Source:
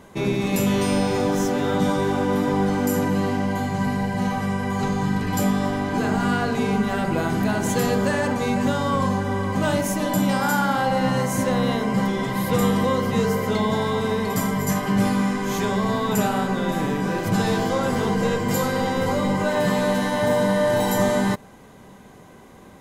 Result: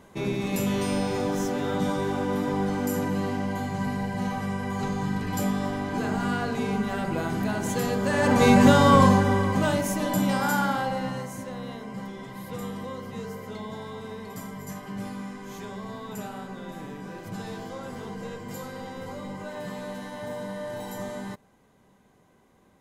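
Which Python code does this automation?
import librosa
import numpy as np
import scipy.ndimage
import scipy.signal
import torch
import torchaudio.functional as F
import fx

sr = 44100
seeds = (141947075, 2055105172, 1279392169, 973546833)

y = fx.gain(x, sr, db=fx.line((8.02, -5.5), (8.43, 6.0), (8.99, 6.0), (9.77, -3.5), (10.65, -3.5), (11.44, -15.0)))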